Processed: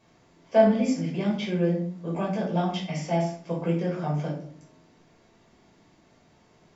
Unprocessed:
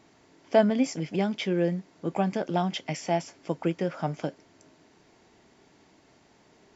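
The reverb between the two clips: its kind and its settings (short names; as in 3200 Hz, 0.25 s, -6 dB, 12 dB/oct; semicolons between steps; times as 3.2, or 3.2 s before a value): shoebox room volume 530 m³, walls furnished, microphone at 5.4 m; gain -8.5 dB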